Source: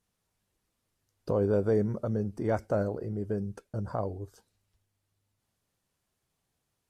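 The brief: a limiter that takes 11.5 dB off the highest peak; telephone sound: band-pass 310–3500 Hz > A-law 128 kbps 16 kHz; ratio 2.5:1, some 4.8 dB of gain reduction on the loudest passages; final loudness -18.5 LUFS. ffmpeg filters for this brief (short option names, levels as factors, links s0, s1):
-af "acompressor=threshold=0.0355:ratio=2.5,alimiter=level_in=2.11:limit=0.0631:level=0:latency=1,volume=0.473,highpass=310,lowpass=3500,volume=18.8" -ar 16000 -c:a pcm_alaw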